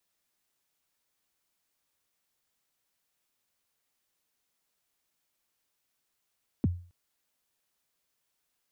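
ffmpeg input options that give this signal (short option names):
-f lavfi -i "aevalsrc='0.112*pow(10,-3*t/0.4)*sin(2*PI*(320*0.026/log(88/320)*(exp(log(88/320)*min(t,0.026)/0.026)-1)+88*max(t-0.026,0)))':d=0.27:s=44100"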